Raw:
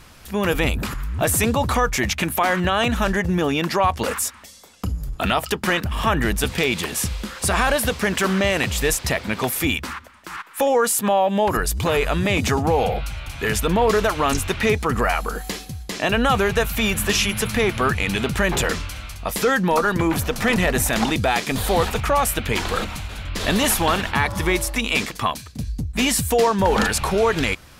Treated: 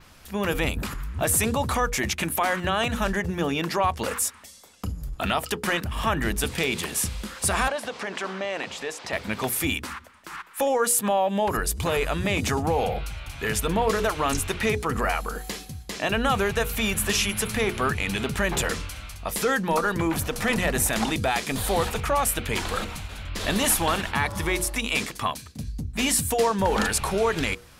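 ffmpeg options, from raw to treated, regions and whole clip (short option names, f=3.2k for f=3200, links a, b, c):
-filter_complex "[0:a]asettb=1/sr,asplit=3[a][b][c];[a]atrim=end=7.684[d];[b]atrim=start=7.68:end=9.13,asetpts=PTS-STARTPTS,afade=t=in:d=0.004:c=qsin,afade=t=out:st=1.446:d=0.004:c=qsin,acompressor=threshold=-23dB:ratio=4:attack=3.2:release=140:knee=1:detection=peak,highpass=260,lowpass=5.9k,equalizer=f=780:t=o:w=1.3:g=5.5[e];[c]atrim=start=9.126[f];[d][e]acrossfade=d=0.004:c1=hsin:c2=qsin[g];[g][f]acrossfade=d=0.004:c1=qsin:c2=hsin,bandreject=f=60:t=h:w=6,bandreject=f=120:t=h:w=6,bandreject=f=180:t=h:w=6,bandreject=f=240:t=h:w=6,bandreject=f=300:t=h:w=6,bandreject=f=360:t=h:w=6,bandreject=f=420:t=h:w=6,bandreject=f=480:t=h:w=6,adynamicequalizer=threshold=0.0141:dfrequency=9600:dqfactor=1.3:tfrequency=9600:tqfactor=1.3:attack=5:release=100:ratio=0.375:range=2.5:mode=boostabove:tftype=bell,volume=-4.5dB"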